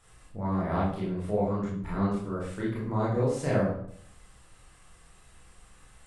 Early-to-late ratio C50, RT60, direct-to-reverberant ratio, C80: 2.0 dB, 0.65 s, -7.5 dB, 6.5 dB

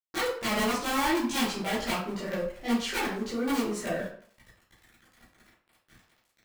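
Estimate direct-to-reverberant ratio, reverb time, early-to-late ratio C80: -11.0 dB, 0.55 s, 8.5 dB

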